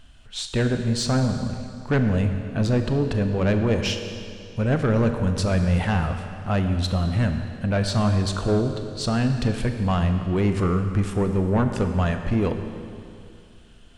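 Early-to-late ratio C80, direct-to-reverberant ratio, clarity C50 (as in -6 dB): 7.5 dB, 6.0 dB, 7.0 dB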